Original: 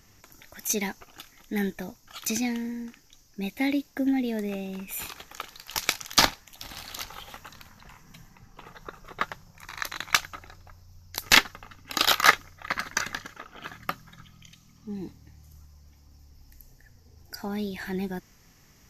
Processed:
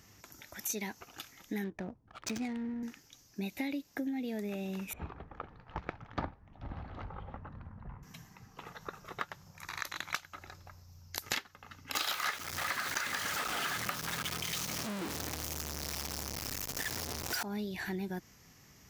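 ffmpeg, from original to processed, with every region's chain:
-filter_complex "[0:a]asettb=1/sr,asplit=3[s0][s1][s2];[s0]atrim=end=1.644[s3];[s1]atrim=start=1.64:end=2.83,asetpts=PTS-STARTPTS,afade=t=in:d=0.004:c=qsin,afade=t=out:st=1.186:d=0.004:c=qsin,asubboost=boost=5.5:cutoff=130,adynamicsmooth=sensitivity=5:basefreq=570[s4];[s2]atrim=start=2.826[s5];[s3][s4]acrossfade=d=0.004:c1=hsin:c2=qsin[s6];[s6][s5]acrossfade=d=0.004:c1=qsin:c2=hsin,asettb=1/sr,asplit=3[s7][s8][s9];[s7]atrim=end=4.934[s10];[s8]atrim=start=4.93:end=8.03,asetpts=PTS-STARTPTS,afade=t=in:d=0.004:c=qsin,afade=t=out:st=3.096:d=0.004:c=qsin,lowpass=1100,aemphasis=mode=reproduction:type=bsi[s11];[s9]atrim=start=8.026[s12];[s10][s11]acrossfade=d=0.004:c1=hsin:c2=qsin[s13];[s13][s12]acrossfade=d=0.004:c1=qsin:c2=hsin,asettb=1/sr,asplit=3[s14][s15][s16];[s14]atrim=end=11.954[s17];[s15]atrim=start=11.95:end=17.43,asetpts=PTS-STARTPTS,afade=t=in:d=0.004:c=qsin,afade=t=out:st=5.476:d=0.004:c=qsin,aeval=exprs='val(0)+0.5*0.0596*sgn(val(0))':c=same,asplit=2[s18][s19];[s19]highpass=f=720:p=1,volume=3.55,asoftclip=type=tanh:threshold=0.631[s20];[s18][s20]amix=inputs=2:normalize=0,lowpass=f=4100:p=1,volume=0.501,highshelf=f=8100:g=8.5[s21];[s16]atrim=start=17.426[s22];[s17][s21]acrossfade=d=0.004:c1=hsin:c2=qsin[s23];[s23][s22]acrossfade=d=0.004:c1=qsin:c2=hsin,highpass=62,acompressor=threshold=0.0224:ratio=6,volume=0.891"

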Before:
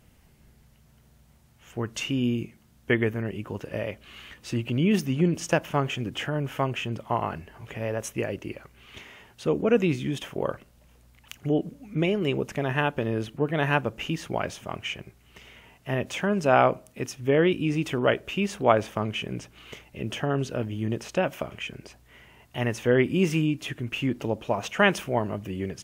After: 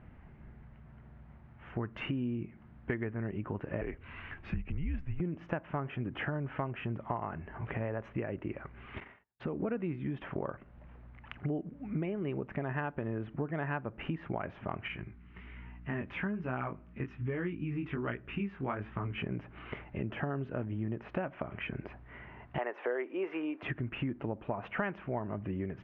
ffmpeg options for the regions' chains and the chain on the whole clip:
-filter_complex "[0:a]asettb=1/sr,asplit=3[s0][s1][s2];[s0]atrim=end=3.814[s3];[s1]atrim=start=3.81:end=5.2,asetpts=PTS-STARTPTS,afade=t=in:d=0.004:c=qsin,afade=t=out:st=1.386:d=0.004:c=qsin,equalizer=f=1200:w=1.2:g=-4,afreqshift=-150[s4];[s2]atrim=start=5.196[s5];[s3][s4]acrossfade=d=0.004:c1=hsin:c2=qsin[s6];[s6][s5]acrossfade=d=0.004:c1=qsin:c2=hsin,asettb=1/sr,asplit=3[s7][s8][s9];[s7]atrim=end=9.004[s10];[s8]atrim=start=9:end=9.61,asetpts=PTS-STARTPTS,afade=t=in:d=0.004:c=qsin,afade=t=out:st=0.606:d=0.004:c=qsin,agate=range=0.00631:threshold=0.00447:ratio=16:release=100:detection=peak,acompressor=threshold=0.0158:ratio=2:attack=3.2:release=140:knee=1:detection=peak[s11];[s9]atrim=start=9.606[s12];[s10][s11]acrossfade=d=0.004:c1=hsin:c2=qsin[s13];[s13][s12]acrossfade=d=0.004:c1=qsin:c2=hsin,asettb=1/sr,asplit=3[s14][s15][s16];[s14]atrim=end=14.884[s17];[s15]atrim=start=14.88:end=19.18,asetpts=PTS-STARTPTS,afade=t=in:d=0.004:c=qsin,afade=t=out:st=4.296:d=0.004:c=qsin,aeval=exprs='val(0)+0.002*(sin(2*PI*60*n/s)+sin(2*PI*2*60*n/s)/2+sin(2*PI*3*60*n/s)/3+sin(2*PI*4*60*n/s)/4+sin(2*PI*5*60*n/s)/5)':c=same,equalizer=f=620:w=1.2:g=-11,flanger=delay=16:depth=6.4:speed=1.2[s18];[s16]atrim=start=19.176[s19];[s17][s18]acrossfade=d=0.004:c1=hsin:c2=qsin[s20];[s20][s19]acrossfade=d=0.004:c1=qsin:c2=hsin,asettb=1/sr,asplit=3[s21][s22][s23];[s21]atrim=end=22.584[s24];[s22]atrim=start=22.58:end=23.63,asetpts=PTS-STARTPTS,afade=t=in:d=0.004:c=qsin,afade=t=out:st=1.046:d=0.004:c=qsin,highpass=f=400:w=0.5412,highpass=f=400:w=1.3066,equalizer=f=650:t=o:w=2.6:g=6.5[s25];[s23]atrim=start=23.626[s26];[s24][s25]acrossfade=d=0.004:c1=hsin:c2=qsin[s27];[s27][s26]acrossfade=d=0.004:c1=qsin:c2=hsin,lowpass=f=2000:w=0.5412,lowpass=f=2000:w=1.3066,equalizer=f=490:w=3:g=-4.5,acompressor=threshold=0.0126:ratio=6,volume=1.78"

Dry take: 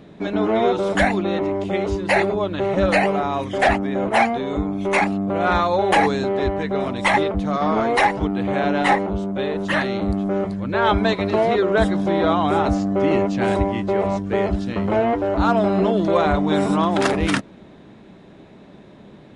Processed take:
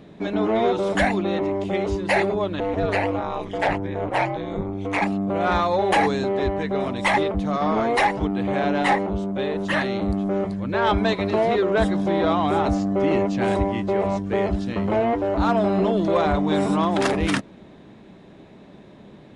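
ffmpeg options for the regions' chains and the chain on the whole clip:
-filter_complex "[0:a]asettb=1/sr,asplit=3[s0][s1][s2];[s0]atrim=end=2.604[s3];[s1]atrim=start=2.6:end=5.02,asetpts=PTS-STARTPTS,afade=t=in:d=0.004:c=qsin,afade=t=out:st=2.416:d=0.004:c=qsin,highshelf=f=7000:g=-9.5,aeval=exprs='val(0)*sin(2*PI*97*n/s)':c=same[s4];[s2]atrim=start=5.016[s5];[s3][s4]acrossfade=d=0.004:c1=hsin:c2=qsin[s6];[s6][s5]acrossfade=d=0.004:c1=qsin:c2=hsin,equalizer=f=1400:t=o:w=0.21:g=-2.5,acontrast=57,volume=0.422"

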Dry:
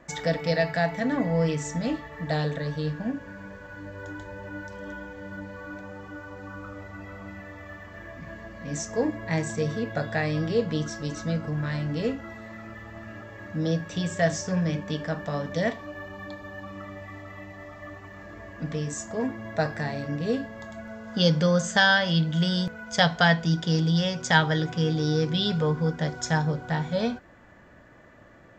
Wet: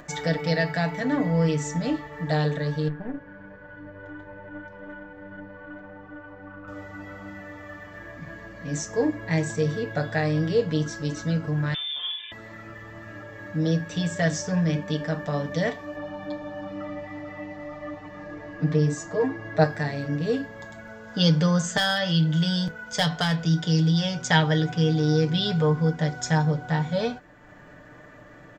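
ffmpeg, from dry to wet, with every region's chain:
-filter_complex "[0:a]asettb=1/sr,asplit=3[s0][s1][s2];[s0]atrim=end=2.884[s3];[s1]atrim=start=2.88:end=6.68,asetpts=PTS-STARTPTS,afade=t=in:d=0.004:c=qsin,afade=t=out:st=3.796:d=0.004:c=qsin,lowpass=2100,aeval=exprs='(tanh(15.8*val(0)+0.75)-tanh(0.75))/15.8':c=same[s4];[s2]atrim=start=6.676[s5];[s3][s4]acrossfade=d=0.004:c1=hsin:c2=qsin[s6];[s6][s5]acrossfade=d=0.004:c1=qsin:c2=hsin,asettb=1/sr,asplit=3[s7][s8][s9];[s7]atrim=end=11.744[s10];[s8]atrim=start=11.74:end=12.32,asetpts=PTS-STARTPTS,afade=t=in:d=0.004:c=qsin,afade=t=out:st=0.576:d=0.004:c=qsin,acompressor=threshold=0.0251:ratio=2:attack=3.2:release=140:knee=1:detection=peak,lowpass=f=3100:t=q:w=0.5098,lowpass=f=3100:t=q:w=0.6013,lowpass=f=3100:t=q:w=0.9,lowpass=f=3100:t=q:w=2.563,afreqshift=-3700[s11];[s9]atrim=start=12.316[s12];[s10][s11]acrossfade=d=0.004:c1=hsin:c2=qsin[s13];[s13][s12]acrossfade=d=0.004:c1=qsin:c2=hsin,asettb=1/sr,asplit=3[s14][s15][s16];[s14]atrim=end=15.964[s17];[s15]atrim=start=15.96:end=19.64,asetpts=PTS-STARTPTS,afade=t=in:d=0.004:c=qsin,afade=t=out:st=3.676:d=0.004:c=qsin,highshelf=f=6800:g=-12,aecho=1:1:6.5:0.94,atrim=end_sample=162288[s18];[s16]atrim=start=19.636[s19];[s17][s18]acrossfade=d=0.004:c1=hsin:c2=qsin[s20];[s20][s19]acrossfade=d=0.004:c1=qsin:c2=hsin,asettb=1/sr,asplit=3[s21][s22][s23];[s21]atrim=end=21.774[s24];[s22]atrim=start=21.77:end=24.19,asetpts=PTS-STARTPTS,afade=t=in:d=0.004:c=qsin,afade=t=out:st=2.416:d=0.004:c=qsin,acrossover=split=150|3000[s25][s26][s27];[s26]acompressor=threshold=0.0501:ratio=2:attack=3.2:release=140:knee=2.83:detection=peak[s28];[s25][s28][s27]amix=inputs=3:normalize=0,asoftclip=type=hard:threshold=0.188,asplit=2[s29][s30];[s30]adelay=26,volume=0.237[s31];[s29][s31]amix=inputs=2:normalize=0,atrim=end_sample=106722[s32];[s23]atrim=start=24.186[s33];[s24][s32]acrossfade=d=0.004:c1=hsin:c2=qsin[s34];[s34][s33]acrossfade=d=0.004:c1=qsin:c2=hsin,acompressor=mode=upward:threshold=0.00794:ratio=2.5,aecho=1:1:6.7:0.51"

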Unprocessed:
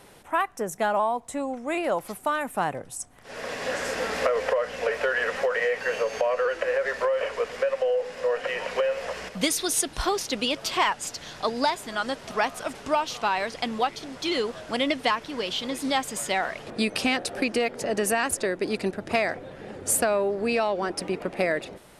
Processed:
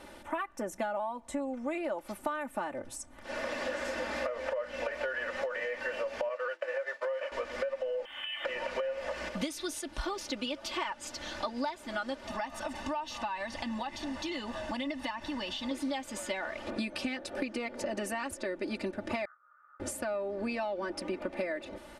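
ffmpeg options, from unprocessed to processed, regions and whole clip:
-filter_complex "[0:a]asettb=1/sr,asplit=3[s0][s1][s2];[s0]atrim=end=6.294[s3];[s1]atrim=start=6.29:end=7.32,asetpts=PTS-STARTPTS,afade=t=in:d=0.004:c=qsin,afade=t=out:st=1.026:d=0.004:c=qsin,highpass=480,agate=range=0.0224:threshold=0.0447:ratio=3:release=100:detection=peak[s4];[s2]atrim=start=7.316[s5];[s3][s4]acrossfade=d=0.004:c1=hsin:c2=qsin[s6];[s6][s5]acrossfade=d=0.004:c1=qsin:c2=hsin,asettb=1/sr,asplit=3[s7][s8][s9];[s7]atrim=end=8.054[s10];[s8]atrim=start=8.05:end=8.45,asetpts=PTS-STARTPTS,afade=t=in:d=0.004:c=qsin,afade=t=out:st=0.396:d=0.004:c=qsin,lowpass=f=3100:t=q:w=0.5098,lowpass=f=3100:t=q:w=0.6013,lowpass=f=3100:t=q:w=0.9,lowpass=f=3100:t=q:w=2.563,afreqshift=-3600,acompressor=threshold=0.0224:ratio=2:attack=3.2:release=140:knee=1:detection=peak,aeval=exprs='sgn(val(0))*max(abs(val(0))-0.00106,0)':c=same[s11];[s9]atrim=start=8.446[s12];[s10][s11]acrossfade=d=0.004:c1=hsin:c2=qsin[s13];[s13][s12]acrossfade=d=0.004:c1=qsin:c2=hsin,asettb=1/sr,asplit=3[s14][s15][s16];[s14]atrim=end=12.274[s17];[s15]atrim=start=12.27:end=15.71,asetpts=PTS-STARTPTS,afade=t=in:d=0.004:c=qsin,afade=t=out:st=3.436:d=0.004:c=qsin,aecho=1:1:1.1:0.56,atrim=end_sample=151704,acompressor=threshold=0.0158:ratio=2:attack=3.2:release=140:knee=1:detection=peak[s18];[s16]atrim=start=15.706[s19];[s17][s18]acrossfade=d=0.004:c1=hsin:c2=qsin[s20];[s20][s19]acrossfade=d=0.004:c1=qsin:c2=hsin,asettb=1/sr,asplit=3[s21][s22][s23];[s21]atrim=end=19.254[s24];[s22]atrim=start=19.25:end=19.8,asetpts=PTS-STARTPTS,afade=t=in:d=0.004:c=qsin,afade=t=out:st=0.546:d=0.004:c=qsin,asuperpass=centerf=1300:order=4:qfactor=7.8,asplit=2[s25][s26];[s26]adelay=16,volume=0.282[s27];[s25][s27]amix=inputs=2:normalize=0,atrim=end_sample=24255[s28];[s23]atrim=start=19.796[s29];[s24][s28]acrossfade=d=0.004:c1=hsin:c2=qsin[s30];[s30][s29]acrossfade=d=0.004:c1=qsin:c2=hsin,aecho=1:1:3.4:0.9,acompressor=threshold=0.0251:ratio=6,lowpass=f=3800:p=1"

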